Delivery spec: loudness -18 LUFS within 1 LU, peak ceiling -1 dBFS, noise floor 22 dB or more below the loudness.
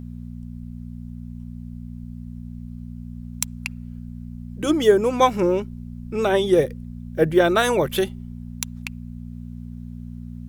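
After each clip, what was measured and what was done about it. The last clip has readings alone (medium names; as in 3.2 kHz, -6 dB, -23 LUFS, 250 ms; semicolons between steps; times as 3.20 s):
hum 60 Hz; highest harmonic 240 Hz; hum level -32 dBFS; loudness -21.0 LUFS; peak level -2.5 dBFS; loudness target -18.0 LUFS
-> de-hum 60 Hz, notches 4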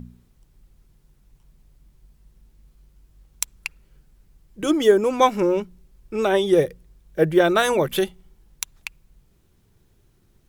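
hum not found; loudness -21.0 LUFS; peak level -2.5 dBFS; loudness target -18.0 LUFS
-> trim +3 dB; peak limiter -1 dBFS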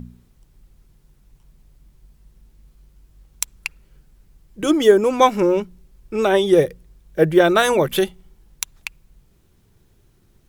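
loudness -18.5 LUFS; peak level -1.0 dBFS; noise floor -57 dBFS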